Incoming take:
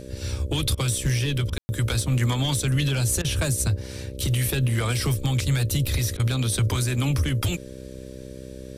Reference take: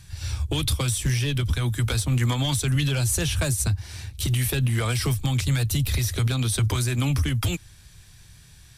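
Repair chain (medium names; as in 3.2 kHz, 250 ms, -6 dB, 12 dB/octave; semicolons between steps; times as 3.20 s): de-hum 64.6 Hz, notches 9; room tone fill 1.58–1.69 s; interpolate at 0.75/1.50/3.22/6.17 s, 24 ms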